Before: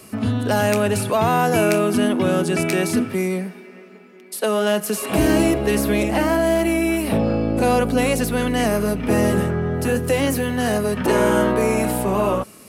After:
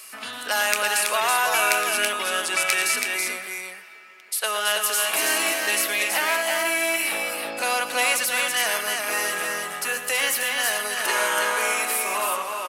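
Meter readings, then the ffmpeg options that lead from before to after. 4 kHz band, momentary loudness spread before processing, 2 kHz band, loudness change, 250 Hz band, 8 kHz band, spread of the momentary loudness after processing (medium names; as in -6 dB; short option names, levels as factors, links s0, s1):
+6.0 dB, 5 LU, +5.0 dB, -2.5 dB, -22.0 dB, +6.0 dB, 6 LU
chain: -filter_complex "[0:a]highpass=1400,asplit=2[s0][s1];[s1]aecho=0:1:115|328:0.282|0.631[s2];[s0][s2]amix=inputs=2:normalize=0,volume=1.68"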